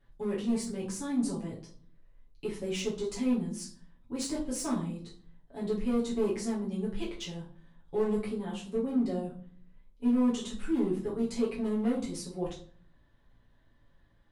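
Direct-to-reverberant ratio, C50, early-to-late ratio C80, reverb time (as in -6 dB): -7.5 dB, 8.5 dB, 14.0 dB, 0.50 s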